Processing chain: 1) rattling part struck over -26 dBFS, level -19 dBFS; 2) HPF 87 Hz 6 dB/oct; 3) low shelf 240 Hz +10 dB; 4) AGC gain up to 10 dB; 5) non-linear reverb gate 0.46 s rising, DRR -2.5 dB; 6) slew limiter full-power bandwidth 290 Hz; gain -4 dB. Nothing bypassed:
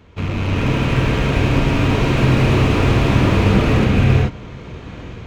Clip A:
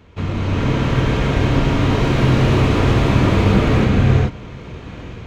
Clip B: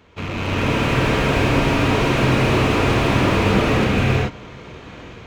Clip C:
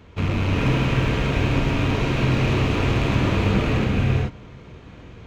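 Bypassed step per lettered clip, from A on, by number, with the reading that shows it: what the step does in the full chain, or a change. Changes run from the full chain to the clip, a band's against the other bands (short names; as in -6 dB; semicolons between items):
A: 1, 2 kHz band -2.0 dB; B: 3, 125 Hz band -6.5 dB; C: 4, momentary loudness spread change -17 LU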